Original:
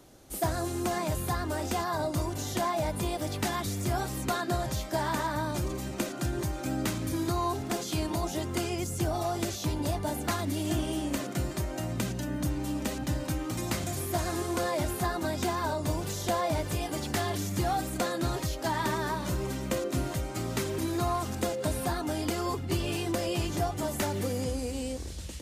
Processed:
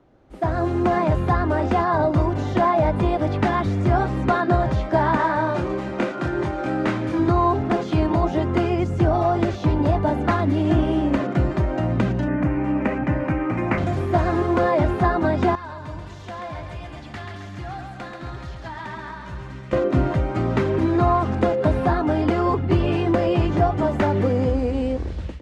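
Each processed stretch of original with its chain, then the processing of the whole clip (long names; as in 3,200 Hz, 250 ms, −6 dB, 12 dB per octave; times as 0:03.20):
0:05.17–0:07.19: variable-slope delta modulation 64 kbit/s + low-shelf EQ 200 Hz −12 dB + double-tracking delay 25 ms −3.5 dB
0:12.28–0:13.78: high-pass filter 120 Hz 6 dB per octave + high shelf with overshoot 2,900 Hz −7 dB, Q 3
0:15.55–0:19.73: guitar amp tone stack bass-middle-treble 5-5-5 + echo with a time of its own for lows and highs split 310 Hz, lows 99 ms, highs 134 ms, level −5 dB
whole clip: low-pass filter 1,800 Hz 12 dB per octave; automatic gain control gain up to 13 dB; level −1.5 dB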